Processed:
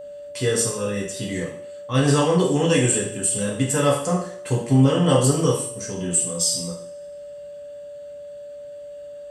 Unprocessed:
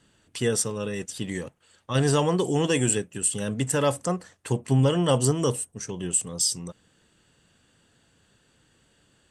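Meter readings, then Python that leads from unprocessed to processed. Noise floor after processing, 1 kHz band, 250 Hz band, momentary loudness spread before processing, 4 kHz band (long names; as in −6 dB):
−38 dBFS, +4.0 dB, +5.5 dB, 11 LU, +3.5 dB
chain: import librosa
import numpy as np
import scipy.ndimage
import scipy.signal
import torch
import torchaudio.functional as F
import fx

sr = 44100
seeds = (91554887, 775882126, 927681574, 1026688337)

y = fx.rev_double_slope(x, sr, seeds[0], early_s=0.56, late_s=1.7, knee_db=-26, drr_db=-4.0)
y = fx.quant_dither(y, sr, seeds[1], bits=12, dither='none')
y = y + 10.0 ** (-33.0 / 20.0) * np.sin(2.0 * np.pi * 580.0 * np.arange(len(y)) / sr)
y = F.gain(torch.from_numpy(y), -1.5).numpy()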